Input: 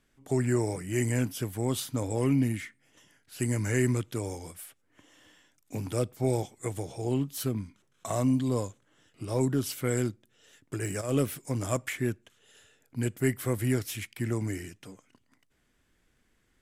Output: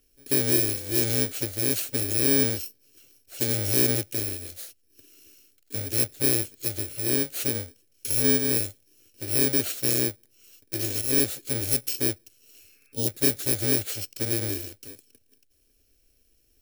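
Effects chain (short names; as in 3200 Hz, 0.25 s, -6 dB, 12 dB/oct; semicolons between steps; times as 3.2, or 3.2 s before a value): FFT order left unsorted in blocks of 64 samples; 4.51–5.97 notch 960 Hz, Q 7.4; 12.61–13.06 spectral repair 1100–2700 Hz before; fixed phaser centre 410 Hz, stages 4; gain +6 dB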